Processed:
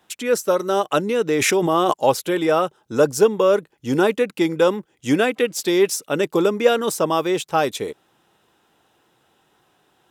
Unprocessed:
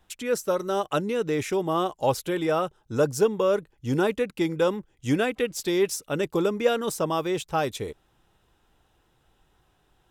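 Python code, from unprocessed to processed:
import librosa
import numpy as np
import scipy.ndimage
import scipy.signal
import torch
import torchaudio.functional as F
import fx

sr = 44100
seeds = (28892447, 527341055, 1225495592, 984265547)

y = scipy.signal.sosfilt(scipy.signal.butter(2, 190.0, 'highpass', fs=sr, output='sos'), x)
y = fx.pre_swell(y, sr, db_per_s=24.0, at=(1.34, 1.92), fade=0.02)
y = F.gain(torch.from_numpy(y), 6.5).numpy()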